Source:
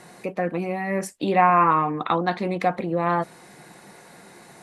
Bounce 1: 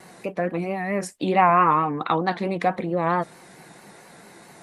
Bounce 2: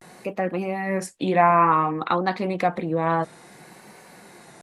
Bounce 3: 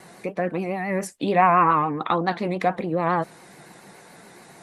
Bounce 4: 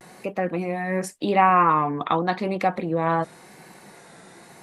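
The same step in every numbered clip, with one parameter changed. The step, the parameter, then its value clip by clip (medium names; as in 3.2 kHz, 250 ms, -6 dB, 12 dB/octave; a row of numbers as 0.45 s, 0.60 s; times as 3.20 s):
vibrato, rate: 4.5 Hz, 0.57 Hz, 7.1 Hz, 0.89 Hz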